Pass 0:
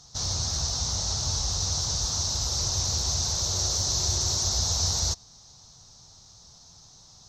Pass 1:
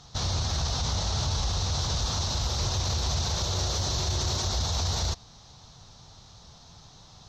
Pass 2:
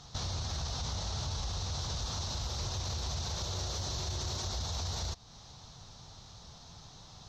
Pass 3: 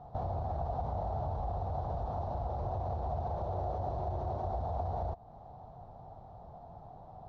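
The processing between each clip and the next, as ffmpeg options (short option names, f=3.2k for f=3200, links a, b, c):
-af "highshelf=f=4.2k:t=q:w=1.5:g=-9.5,alimiter=level_in=1.5dB:limit=-24dB:level=0:latency=1:release=21,volume=-1.5dB,volume=6dB"
-af "acompressor=threshold=-38dB:ratio=2,volume=-1dB"
-af "lowpass=f=720:t=q:w=4.9"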